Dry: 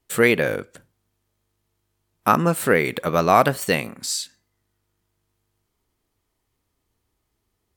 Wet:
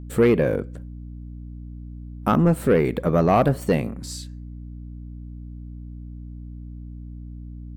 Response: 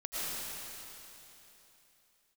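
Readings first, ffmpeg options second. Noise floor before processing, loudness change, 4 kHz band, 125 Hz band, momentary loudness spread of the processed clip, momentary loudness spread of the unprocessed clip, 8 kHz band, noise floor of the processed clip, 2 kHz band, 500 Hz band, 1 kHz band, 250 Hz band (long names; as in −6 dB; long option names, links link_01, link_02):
−76 dBFS, −0.5 dB, −10.0 dB, +5.5 dB, 20 LU, 9 LU, −11.0 dB, −37 dBFS, −10.0 dB, +0.5 dB, −5.0 dB, +3.5 dB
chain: -af "tiltshelf=frequency=910:gain=9,asoftclip=type=tanh:threshold=-7.5dB,aeval=exprs='val(0)+0.0224*(sin(2*PI*60*n/s)+sin(2*PI*2*60*n/s)/2+sin(2*PI*3*60*n/s)/3+sin(2*PI*4*60*n/s)/4+sin(2*PI*5*60*n/s)/5)':channel_layout=same,volume=-2dB"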